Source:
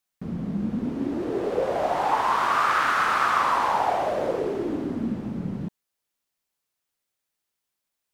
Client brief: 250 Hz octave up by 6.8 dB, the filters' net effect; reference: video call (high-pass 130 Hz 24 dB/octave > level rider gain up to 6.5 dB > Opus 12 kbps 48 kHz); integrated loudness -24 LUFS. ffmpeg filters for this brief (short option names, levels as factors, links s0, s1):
-af "highpass=f=130:w=0.5412,highpass=f=130:w=1.3066,equalizer=f=250:t=o:g=8.5,dynaudnorm=m=2.11,volume=0.891" -ar 48000 -c:a libopus -b:a 12k